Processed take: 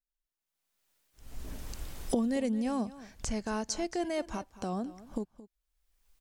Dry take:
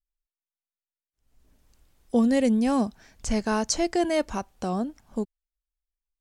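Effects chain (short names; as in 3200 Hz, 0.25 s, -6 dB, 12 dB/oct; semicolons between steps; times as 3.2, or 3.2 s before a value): recorder AGC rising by 33 dB/s; echo 0.222 s -17 dB; gain -9 dB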